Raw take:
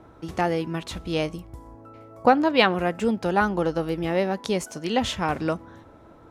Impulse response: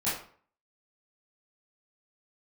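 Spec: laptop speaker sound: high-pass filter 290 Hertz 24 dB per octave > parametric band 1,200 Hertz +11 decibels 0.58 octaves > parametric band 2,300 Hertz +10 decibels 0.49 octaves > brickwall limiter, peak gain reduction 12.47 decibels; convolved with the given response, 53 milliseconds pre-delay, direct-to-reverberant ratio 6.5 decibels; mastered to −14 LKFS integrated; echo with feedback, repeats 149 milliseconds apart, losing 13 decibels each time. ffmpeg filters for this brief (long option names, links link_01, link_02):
-filter_complex "[0:a]aecho=1:1:149|298|447:0.224|0.0493|0.0108,asplit=2[link_01][link_02];[1:a]atrim=start_sample=2205,adelay=53[link_03];[link_02][link_03]afir=irnorm=-1:irlink=0,volume=-15dB[link_04];[link_01][link_04]amix=inputs=2:normalize=0,highpass=frequency=290:width=0.5412,highpass=frequency=290:width=1.3066,equalizer=frequency=1200:width_type=o:width=0.58:gain=11,equalizer=frequency=2300:width_type=o:width=0.49:gain=10,volume=10dB,alimiter=limit=-1.5dB:level=0:latency=1"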